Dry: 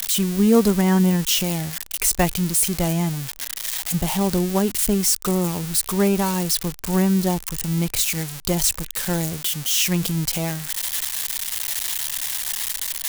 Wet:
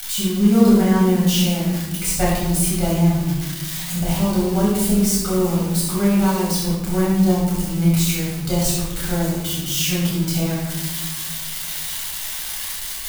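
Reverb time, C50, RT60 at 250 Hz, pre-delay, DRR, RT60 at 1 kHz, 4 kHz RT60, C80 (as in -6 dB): 1.2 s, 0.0 dB, 2.1 s, 9 ms, -7.0 dB, 1.0 s, 0.75 s, 3.5 dB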